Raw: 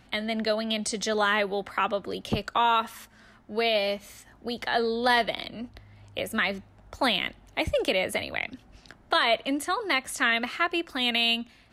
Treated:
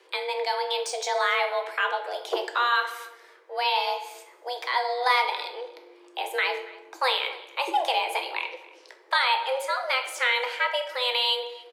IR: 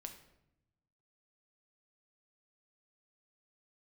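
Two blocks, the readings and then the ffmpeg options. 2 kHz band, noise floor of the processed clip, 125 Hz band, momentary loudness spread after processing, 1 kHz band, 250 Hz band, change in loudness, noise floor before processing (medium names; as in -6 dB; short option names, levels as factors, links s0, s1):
+1.0 dB, -54 dBFS, under -40 dB, 13 LU, +3.0 dB, -18.0 dB, +0.5 dB, -56 dBFS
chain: -filter_complex "[0:a]highpass=f=94:w=0.5412,highpass=f=94:w=1.3066,acrossover=split=770|7000[s0][s1][s2];[s2]asoftclip=type=tanh:threshold=0.01[s3];[s0][s1][s3]amix=inputs=3:normalize=0,afreqshift=250,asplit=2[s4][s5];[s5]adelay=279.9,volume=0.1,highshelf=f=4000:g=-6.3[s6];[s4][s6]amix=inputs=2:normalize=0[s7];[1:a]atrim=start_sample=2205[s8];[s7][s8]afir=irnorm=-1:irlink=0,volume=1.78"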